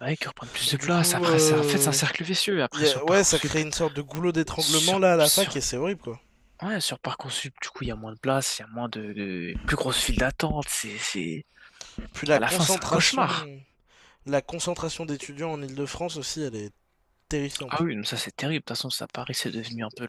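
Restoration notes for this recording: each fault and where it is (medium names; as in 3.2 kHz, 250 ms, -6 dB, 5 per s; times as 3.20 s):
4.15 s: pop -16 dBFS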